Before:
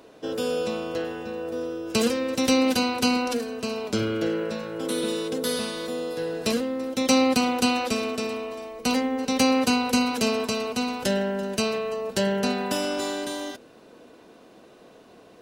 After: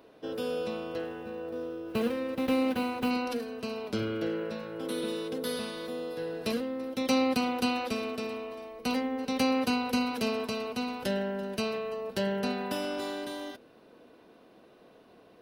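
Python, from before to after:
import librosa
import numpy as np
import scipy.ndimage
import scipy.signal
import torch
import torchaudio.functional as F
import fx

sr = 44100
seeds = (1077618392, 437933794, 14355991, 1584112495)

y = fx.median_filter(x, sr, points=9, at=(0.99, 3.11))
y = fx.peak_eq(y, sr, hz=7200.0, db=-11.5, octaves=0.67)
y = F.gain(torch.from_numpy(y), -6.0).numpy()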